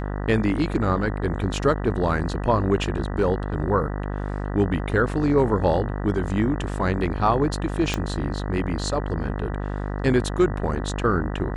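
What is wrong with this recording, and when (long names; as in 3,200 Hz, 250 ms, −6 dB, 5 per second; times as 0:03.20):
mains buzz 50 Hz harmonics 39 −28 dBFS
0:07.94: click −9 dBFS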